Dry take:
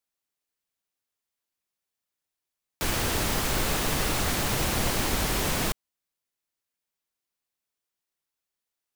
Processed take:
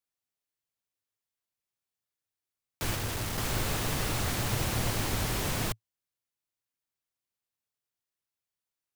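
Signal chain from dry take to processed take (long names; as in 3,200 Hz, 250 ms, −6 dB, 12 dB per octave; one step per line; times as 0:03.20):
0:02.95–0:03.38: gain into a clipping stage and back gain 27 dB
parametric band 110 Hz +9.5 dB 0.52 octaves
level −5 dB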